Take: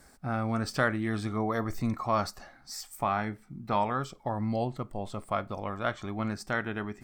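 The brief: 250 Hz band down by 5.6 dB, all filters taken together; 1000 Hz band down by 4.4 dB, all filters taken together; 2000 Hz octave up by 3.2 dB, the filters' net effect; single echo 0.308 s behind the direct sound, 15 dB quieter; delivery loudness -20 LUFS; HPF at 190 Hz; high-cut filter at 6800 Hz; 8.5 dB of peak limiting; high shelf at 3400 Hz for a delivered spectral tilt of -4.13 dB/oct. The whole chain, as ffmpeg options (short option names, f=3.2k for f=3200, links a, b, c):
-af "highpass=190,lowpass=6.8k,equalizer=f=250:t=o:g=-4.5,equalizer=f=1k:t=o:g=-8.5,equalizer=f=2k:t=o:g=7,highshelf=f=3.4k:g=4,alimiter=limit=-21dB:level=0:latency=1,aecho=1:1:308:0.178,volume=16.5dB"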